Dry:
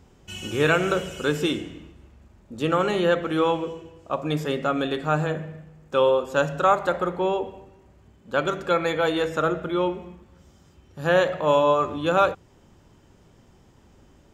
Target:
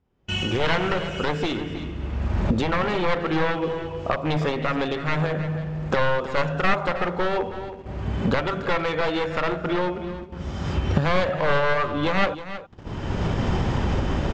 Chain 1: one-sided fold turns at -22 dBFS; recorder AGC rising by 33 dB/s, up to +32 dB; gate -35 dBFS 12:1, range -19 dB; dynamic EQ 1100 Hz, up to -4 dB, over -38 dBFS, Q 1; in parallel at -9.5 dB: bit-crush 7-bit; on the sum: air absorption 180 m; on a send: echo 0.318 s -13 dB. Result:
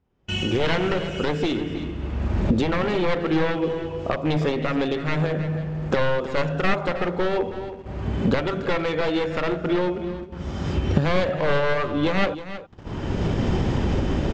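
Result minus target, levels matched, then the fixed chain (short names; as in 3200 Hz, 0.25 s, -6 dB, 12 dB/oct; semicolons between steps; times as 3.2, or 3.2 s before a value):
1000 Hz band -3.5 dB
one-sided fold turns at -22 dBFS; recorder AGC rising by 33 dB/s, up to +32 dB; gate -35 dBFS 12:1, range -19 dB; dynamic EQ 320 Hz, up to -4 dB, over -38 dBFS, Q 1; in parallel at -9.5 dB: bit-crush 7-bit; on the sum: air absorption 180 m; on a send: echo 0.318 s -13 dB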